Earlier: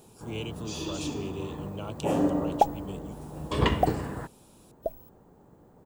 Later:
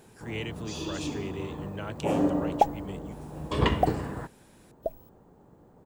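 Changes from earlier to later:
speech: remove Butterworth band-stop 1.8 kHz, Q 1.5; master: add treble shelf 7.3 kHz -5 dB

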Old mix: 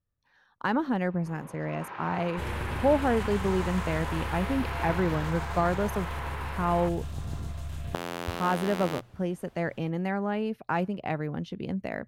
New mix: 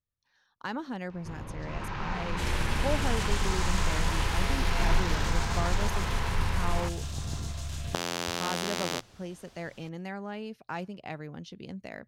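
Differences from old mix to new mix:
speech -9.0 dB; first sound: remove band-pass 410–5800 Hz; master: add peaking EQ 5.7 kHz +13 dB 1.7 oct

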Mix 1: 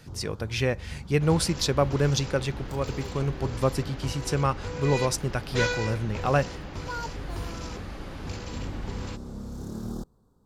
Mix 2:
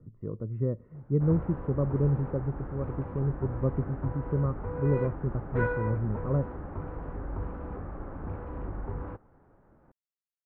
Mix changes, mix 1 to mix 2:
speech: add boxcar filter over 55 samples; first sound: muted; master: add inverse Chebyshev low-pass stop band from 5.9 kHz, stop band 70 dB

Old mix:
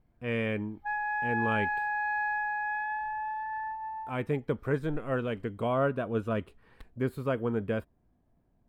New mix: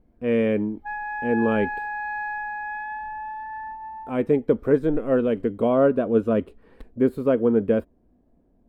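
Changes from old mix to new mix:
speech: add ten-band graphic EQ 125 Hz -9 dB, 250 Hz +7 dB, 500 Hz +8 dB; master: add bass shelf 360 Hz +8 dB

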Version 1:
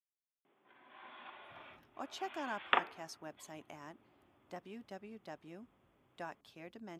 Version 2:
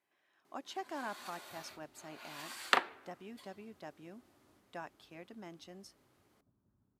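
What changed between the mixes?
speech: entry -1.45 s; second sound: remove rippled Chebyshev low-pass 3.5 kHz, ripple 3 dB

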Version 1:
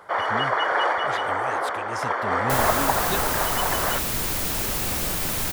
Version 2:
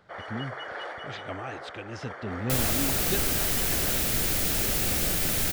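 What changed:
speech: add distance through air 150 m; first sound -12.0 dB; master: add peaking EQ 1 kHz -9.5 dB 0.57 oct

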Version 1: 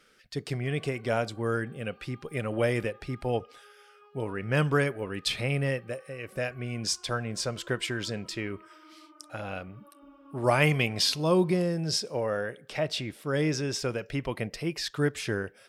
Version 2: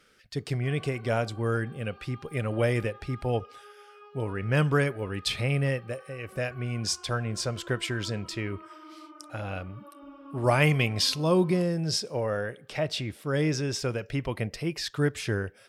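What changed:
speech: add peaking EQ 84 Hz +8.5 dB 1 oct; background +6.5 dB

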